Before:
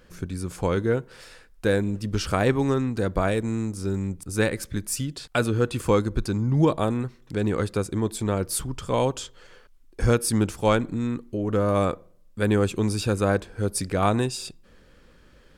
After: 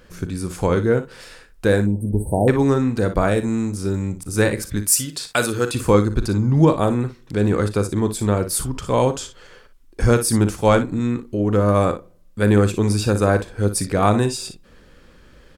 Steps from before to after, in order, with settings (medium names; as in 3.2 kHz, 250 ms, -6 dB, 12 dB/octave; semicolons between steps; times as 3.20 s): 1.86–2.48 s: brick-wall FIR band-stop 970–8000 Hz; 4.85–5.75 s: tilt EQ +2.5 dB/octave; early reflections 39 ms -13.5 dB, 58 ms -11.5 dB; dynamic bell 3 kHz, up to -4 dB, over -43 dBFS, Q 1.6; trim +5 dB